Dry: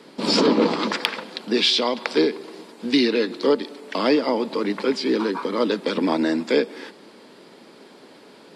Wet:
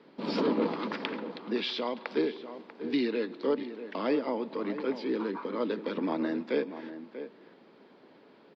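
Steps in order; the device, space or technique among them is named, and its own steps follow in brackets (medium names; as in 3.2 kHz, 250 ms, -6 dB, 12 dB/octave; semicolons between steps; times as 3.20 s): shout across a valley (distance through air 260 m; echo from a far wall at 110 m, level -11 dB); trim -9 dB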